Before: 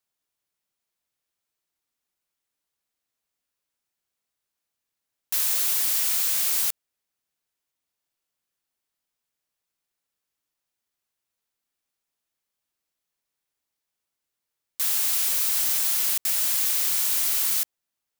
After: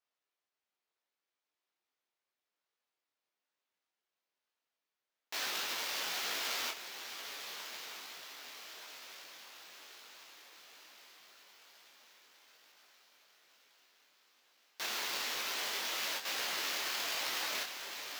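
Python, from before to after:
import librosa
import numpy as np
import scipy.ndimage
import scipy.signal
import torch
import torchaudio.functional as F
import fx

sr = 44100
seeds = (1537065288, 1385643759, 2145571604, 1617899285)

p1 = fx.air_absorb(x, sr, metres=99.0)
p2 = p1 + fx.echo_diffused(p1, sr, ms=1229, feedback_pct=59, wet_db=-8, dry=0)
p3 = fx.sample_hold(p2, sr, seeds[0], rate_hz=9400.0, jitter_pct=20)
p4 = scipy.signal.sosfilt(scipy.signal.butter(2, 340.0, 'highpass', fs=sr, output='sos'), p3)
p5 = fx.detune_double(p4, sr, cents=38)
y = F.gain(torch.from_numpy(p5), 2.5).numpy()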